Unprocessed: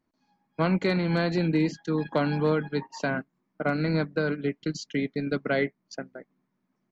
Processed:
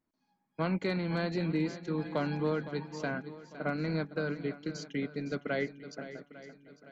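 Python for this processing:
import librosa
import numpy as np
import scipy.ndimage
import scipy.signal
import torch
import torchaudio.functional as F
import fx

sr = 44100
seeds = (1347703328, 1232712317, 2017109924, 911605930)

y = fx.echo_swing(x, sr, ms=851, ratio=1.5, feedback_pct=36, wet_db=-13.5)
y = y * librosa.db_to_amplitude(-7.0)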